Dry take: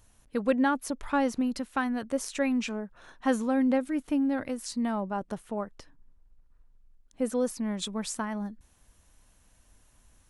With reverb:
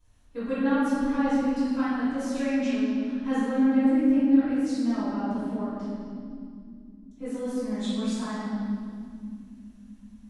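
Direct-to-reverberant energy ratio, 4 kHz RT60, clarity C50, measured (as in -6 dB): -17.5 dB, no reading, -4.5 dB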